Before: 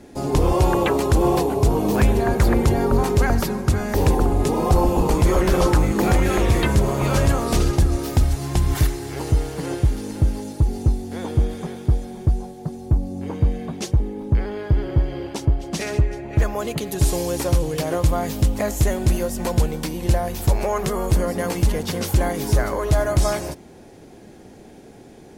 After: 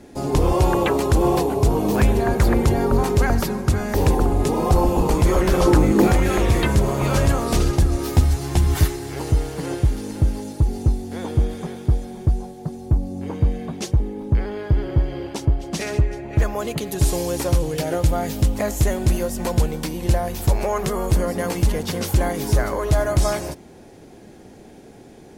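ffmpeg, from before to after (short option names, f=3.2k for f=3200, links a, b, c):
-filter_complex "[0:a]asettb=1/sr,asplit=3[a][b][c];[a]atrim=end=5.674[d];[b]atrim=start=5.67:end=6.07,asetpts=PTS-STARTPTS,afade=t=in:d=0.004:c=qsin,afade=t=out:st=0.396:d=0.004:c=qsin,equalizer=f=310:t=o:w=1.6:g=7[e];[c]atrim=start=6.066[f];[d][e]acrossfade=d=0.004:c1=hsin:c2=qsin[g];[g][f]acrossfade=d=0.004:c1=qsin:c2=hsin,asettb=1/sr,asplit=3[h][i][j];[h]atrim=end=7.994[k];[i]atrim=start=7.99:end=8.96,asetpts=PTS-STARTPTS,afade=t=in:d=0.004:c=qsin,afade=t=out:st=0.966:d=0.004:c=qsin,asplit=2[l][m];[m]adelay=12,volume=-5dB[n];[l][n]amix=inputs=2:normalize=0,atrim=end_sample=42777[o];[j]atrim=start=8.956[p];[k][o]acrossfade=d=0.004:c1=hsin:c2=qsin[q];[q][p]acrossfade=d=0.004:c1=qsin:c2=hsin,asettb=1/sr,asplit=3[r][s][t];[r]atrim=end=17.764[u];[s]atrim=start=17.76:end=18.38,asetpts=PTS-STARTPTS,afade=t=in:d=0.004:c=qsin,afade=t=out:st=0.616:d=0.004:c=qsin,asuperstop=centerf=1100:order=4:qfactor=6[v];[t]atrim=start=18.376[w];[u][v]acrossfade=d=0.004:c1=hsin:c2=qsin[x];[x][w]acrossfade=d=0.004:c1=qsin:c2=hsin"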